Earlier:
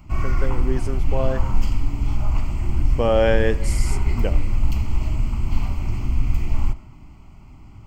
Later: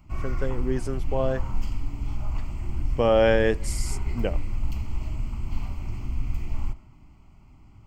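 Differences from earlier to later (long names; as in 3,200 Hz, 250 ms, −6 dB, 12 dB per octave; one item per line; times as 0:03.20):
speech: send −11.0 dB
background −8.0 dB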